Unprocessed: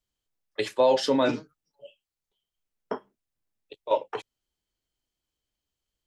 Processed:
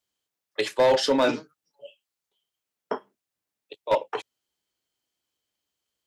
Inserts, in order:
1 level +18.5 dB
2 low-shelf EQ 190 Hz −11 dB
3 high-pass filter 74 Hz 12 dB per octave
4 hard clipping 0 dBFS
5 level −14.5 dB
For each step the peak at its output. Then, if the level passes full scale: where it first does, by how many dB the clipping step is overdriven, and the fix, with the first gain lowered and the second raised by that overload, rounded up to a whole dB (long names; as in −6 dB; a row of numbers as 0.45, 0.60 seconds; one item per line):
+8.0, +6.5, +6.5, 0.0, −14.5 dBFS
step 1, 6.5 dB
step 1 +11.5 dB, step 5 −7.5 dB